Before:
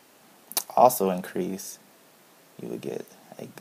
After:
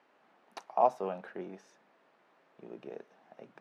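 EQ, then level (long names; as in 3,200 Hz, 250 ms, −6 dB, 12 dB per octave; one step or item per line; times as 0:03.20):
high-pass filter 620 Hz 6 dB per octave
low-pass filter 1,900 Hz 12 dB per octave
−6.0 dB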